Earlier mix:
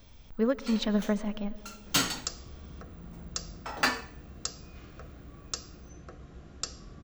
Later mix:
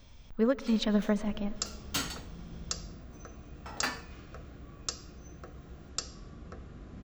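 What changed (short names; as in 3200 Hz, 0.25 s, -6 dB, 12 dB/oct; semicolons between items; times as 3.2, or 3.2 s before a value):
first sound -7.0 dB; second sound: entry -0.65 s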